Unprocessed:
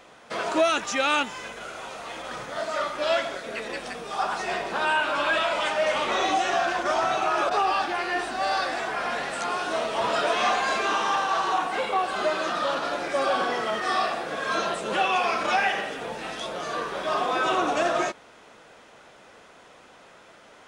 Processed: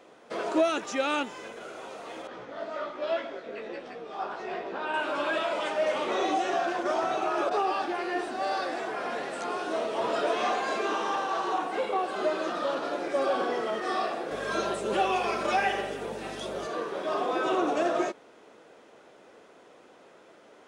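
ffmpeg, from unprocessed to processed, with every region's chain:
ffmpeg -i in.wav -filter_complex "[0:a]asettb=1/sr,asplit=3[link_01][link_02][link_03];[link_01]atrim=end=2.274[link_04];[link_02]atrim=start=2.27:end=4.94,asetpts=PTS-STARTPTS,afade=type=in:duration=0.004:curve=qsin,afade=type=out:start_time=2.666:duration=0.004:curve=qsin,lowpass=4100,flanger=delay=15:depth=4.4:speed=1.2[link_05];[link_03]atrim=start=4.936[link_06];[link_04][link_05]acrossfade=duration=0.004:curve1=hsin:curve2=qsin[link_07];[link_07][link_06]acrossfade=duration=0.004:curve1=qsin:curve2=hsin,asettb=1/sr,asplit=3[link_08][link_09][link_10];[link_08]atrim=end=14.314[link_11];[link_09]atrim=start=14.31:end=16.67,asetpts=PTS-STARTPTS,afade=type=in:duration=0.004:curve=qsin,afade=type=out:start_time=2.356:duration=0.004:curve=qsin,highshelf=frequency=7200:gain=8.5,aecho=1:1:5.1:0.39,atrim=end_sample=104076,aeval=exprs='val(0)+0.0112*(sin(2*PI*50*n/s)+sin(2*PI*2*50*n/s)/2+sin(2*PI*3*50*n/s)/3+sin(2*PI*4*50*n/s)/4+sin(2*PI*5*50*n/s)/5)':channel_layout=same[link_12];[link_10]atrim=start=16.666[link_13];[link_11][link_12]acrossfade=duration=0.004:curve1=hsin:curve2=qsin[link_14];[link_14][link_13]acrossfade=duration=0.004:curve1=qsin:curve2=hsin,highpass=frequency=97:poles=1,equalizer=frequency=370:width=0.81:gain=10.5,volume=-8dB" out.wav

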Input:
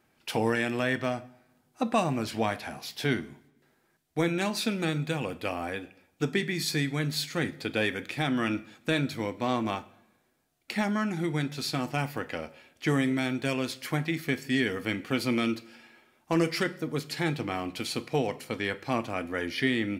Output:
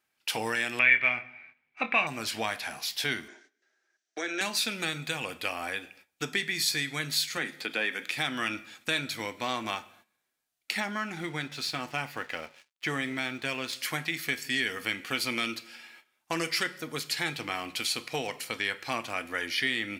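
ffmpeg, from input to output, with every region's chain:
ffmpeg -i in.wav -filter_complex "[0:a]asettb=1/sr,asplit=3[link_01][link_02][link_03];[link_01]atrim=end=0.794[link_04];[link_02]atrim=start=0.79:end=2.07,asetpts=PTS-STARTPTS,afade=type=in:duration=0.004:curve=qsin,afade=type=out:start_time=1.276:duration=0.004:curve=qsin,lowpass=frequency=2300:width_type=q:width=12,asplit=2[link_05][link_06];[link_06]adelay=25,volume=-9.5dB[link_07];[link_05][link_07]amix=inputs=2:normalize=0,atrim=end_sample=56448[link_08];[link_03]atrim=start=2.066[link_09];[link_04][link_08]acrossfade=duration=0.004:curve1=hsin:curve2=qsin[link_10];[link_10][link_09]acrossfade=duration=0.004:curve1=qsin:curve2=hsin,asettb=1/sr,asplit=3[link_11][link_12][link_13];[link_11]atrim=end=3.284[link_14];[link_12]atrim=start=3.28:end=4.41,asetpts=PTS-STARTPTS,afade=type=in:duration=0.004:curve=qsin,afade=type=out:start_time=1.126:duration=0.004:curve=qsin,acompressor=threshold=-28dB:ratio=4:attack=3.2:release=140:knee=1:detection=peak,highpass=frequency=270:width=0.5412,highpass=frequency=270:width=1.3066,equalizer=frequency=370:width_type=q:width=4:gain=7,equalizer=frequency=630:width_type=q:width=4:gain=6,equalizer=frequency=1000:width_type=q:width=4:gain=-5,equalizer=frequency=1600:width_type=q:width=4:gain=9,equalizer=frequency=5900:width_type=q:width=4:gain=9,lowpass=frequency=7200:width=0.5412,lowpass=frequency=7200:width=1.3066[link_15];[link_13]atrim=start=4.406[link_16];[link_14][link_15]acrossfade=duration=0.004:curve1=hsin:curve2=qsin[link_17];[link_17][link_16]acrossfade=duration=0.004:curve1=qsin:curve2=hsin,asettb=1/sr,asplit=3[link_18][link_19][link_20];[link_18]atrim=end=7.374[link_21];[link_19]atrim=start=7.37:end=8.09,asetpts=PTS-STARTPTS,afade=type=in:duration=0.004:curve=qsin,afade=type=out:start_time=0.716:duration=0.004:curve=qsin,acrossover=split=2900[link_22][link_23];[link_23]acompressor=threshold=-46dB:ratio=4:attack=1:release=60[link_24];[link_22][link_24]amix=inputs=2:normalize=0,highpass=frequency=160:width=0.5412,highpass=frequency=160:width=1.3066[link_25];[link_20]atrim=start=8.086[link_26];[link_21][link_25]acrossfade=duration=0.004:curve1=hsin:curve2=qsin[link_27];[link_27][link_26]acrossfade=duration=0.004:curve1=qsin:curve2=hsin,asettb=1/sr,asplit=3[link_28][link_29][link_30];[link_28]atrim=end=10.804[link_31];[link_29]atrim=start=10.8:end=13.73,asetpts=PTS-STARTPTS,afade=type=in:duration=0.004:curve=qsin,afade=type=out:start_time=2.926:duration=0.004:curve=qsin,highshelf=frequency=5000:gain=-11.5,aeval=exprs='sgn(val(0))*max(abs(val(0))-0.0015,0)':channel_layout=same[link_32];[link_30]atrim=start=13.726[link_33];[link_31][link_32]acrossfade=duration=0.004:curve1=hsin:curve2=qsin[link_34];[link_34][link_33]acrossfade=duration=0.004:curve1=qsin:curve2=hsin,agate=range=-13dB:threshold=-57dB:ratio=16:detection=peak,tiltshelf=frequency=840:gain=-8.5,acompressor=threshold=-31dB:ratio=1.5" out.wav

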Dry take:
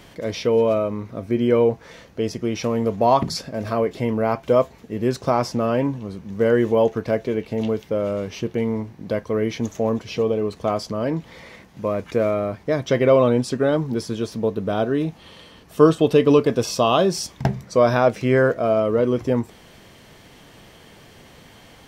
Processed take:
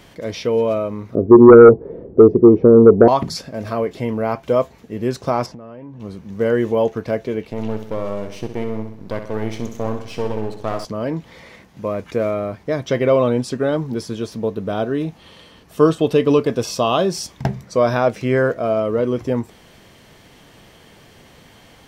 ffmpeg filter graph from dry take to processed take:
ffmpeg -i in.wav -filter_complex "[0:a]asettb=1/sr,asplit=3[link_01][link_02][link_03];[link_01]atrim=end=1.154[link_04];[link_02]atrim=start=1.15:end=3.08,asetpts=PTS-STARTPTS,afade=type=in:duration=0.004:curve=qsin,afade=type=out:start_time=1.926:duration=0.004:curve=qsin,lowpass=frequency=400:width_type=q:width=4.5,aeval=exprs='0.891*sin(PI/2*1.78*val(0)/0.891)':channel_layout=same[link_05];[link_03]atrim=start=3.076[link_06];[link_04][link_05]acrossfade=duration=0.004:curve1=hsin:curve2=qsin[link_07];[link_07][link_06]acrossfade=duration=0.004:curve1=qsin:curve2=hsin,asettb=1/sr,asplit=3[link_08][link_09][link_10];[link_08]atrim=end=5.464[link_11];[link_09]atrim=start=5.46:end=6,asetpts=PTS-STARTPTS,afade=type=in:duration=0.004:curve=qsin,afade=type=out:start_time=0.536:duration=0.004:curve=qsin,lowpass=frequency=1700:poles=1,acompressor=threshold=-33dB:ratio=8:attack=3.2:release=140:knee=1:detection=peak[link_12];[link_10]atrim=start=5.996[link_13];[link_11][link_12]acrossfade=duration=0.004:curve1=hsin:curve2=qsin[link_14];[link_14][link_13]acrossfade=duration=0.004:curve1=qsin:curve2=hsin,asettb=1/sr,asplit=3[link_15][link_16][link_17];[link_15]atrim=end=7.504[link_18];[link_16]atrim=start=7.5:end=10.85,asetpts=PTS-STARTPTS,afade=type=in:duration=0.004:curve=qsin,afade=type=out:start_time=3.346:duration=0.004:curve=qsin,aeval=exprs='if(lt(val(0),0),0.251*val(0),val(0))':channel_layout=same,aecho=1:1:64|128|192|256|320|384:0.355|0.181|0.0923|0.0471|0.024|0.0122,atrim=end_sample=147735[link_19];[link_17]atrim=start=10.846[link_20];[link_18][link_19]acrossfade=duration=0.004:curve1=hsin:curve2=qsin[link_21];[link_21][link_20]acrossfade=duration=0.004:curve1=qsin:curve2=hsin" out.wav

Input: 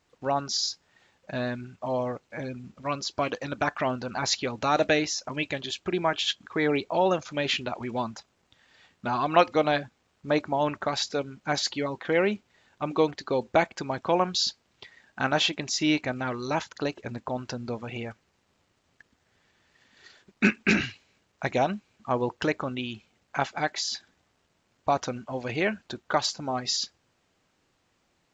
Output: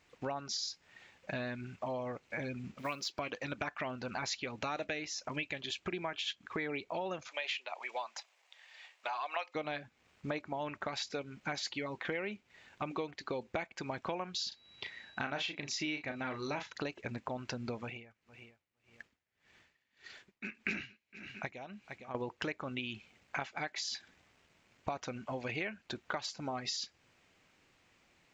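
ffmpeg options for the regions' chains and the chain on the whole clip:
ffmpeg -i in.wav -filter_complex "[0:a]asettb=1/sr,asplit=3[link_01][link_02][link_03];[link_01]atrim=end=2.784[link_04];[link_02]atrim=start=2.78:end=3.19,asetpts=PTS-STARTPTS,afade=type=in:duration=0.004:curve=qsin,afade=type=out:start_time=0.406:duration=0.004:curve=qsin,highpass=140,equalizer=frequency=3500:width=0.8:gain=4,acrusher=bits=6:mode=log:mix=0:aa=0.000001[link_05];[link_03]atrim=start=3.186[link_06];[link_04][link_05]acrossfade=duration=0.004:curve1=hsin:curve2=qsin[link_07];[link_07][link_06]acrossfade=duration=0.004:curve1=qsin:curve2=hsin,asettb=1/sr,asplit=3[link_08][link_09][link_10];[link_08]atrim=end=7.284[link_11];[link_09]atrim=start=7.28:end=9.55,asetpts=PTS-STARTPTS,afade=type=in:duration=0.004:curve=qsin,afade=type=out:start_time=2.266:duration=0.004:curve=qsin,highpass=frequency=610:width=0.5412,highpass=frequency=610:width=1.3066,equalizer=frequency=1400:width=3.2:gain=-5.5[link_12];[link_10]atrim=start=9.546[link_13];[link_11][link_12]acrossfade=duration=0.004:curve1=hsin:curve2=qsin[link_14];[link_14][link_13]acrossfade=duration=0.004:curve1=qsin:curve2=hsin,asettb=1/sr,asplit=3[link_15][link_16][link_17];[link_15]atrim=end=14.484[link_18];[link_16]atrim=start=14.48:end=16.74,asetpts=PTS-STARTPTS,afade=type=in:duration=0.004:curve=qsin,afade=type=out:start_time=2.256:duration=0.004:curve=qsin,lowpass=6700,aeval=exprs='val(0)+0.00178*sin(2*PI*3900*n/s)':channel_layout=same,asplit=2[link_19][link_20];[link_20]adelay=35,volume=-8dB[link_21];[link_19][link_21]amix=inputs=2:normalize=0,atrim=end_sample=99666[link_22];[link_17]atrim=start=16.736[link_23];[link_18][link_22]acrossfade=duration=0.004:curve1=hsin:curve2=qsin[link_24];[link_24][link_23]acrossfade=duration=0.004:curve1=qsin:curve2=hsin,asettb=1/sr,asplit=3[link_25][link_26][link_27];[link_25]atrim=end=17.804[link_28];[link_26]atrim=start=17.8:end=22.15,asetpts=PTS-STARTPTS,afade=type=in:duration=0.004:curve=qsin,afade=type=out:start_time=4.346:duration=0.004:curve=qsin,aecho=1:1:460|920:0.0891|0.0267,atrim=end_sample=191835,aeval=exprs='val(0)*pow(10,-24*(0.5-0.5*cos(2*PI*1.7*n/s))/20)':channel_layout=same[link_29];[link_27]atrim=start=22.146[link_30];[link_28][link_29]acrossfade=duration=0.004:curve1=hsin:curve2=qsin[link_31];[link_31][link_30]acrossfade=duration=0.004:curve1=qsin:curve2=hsin,equalizer=frequency=2300:width_type=o:width=0.79:gain=7.5,acompressor=threshold=-36dB:ratio=6" out.wav

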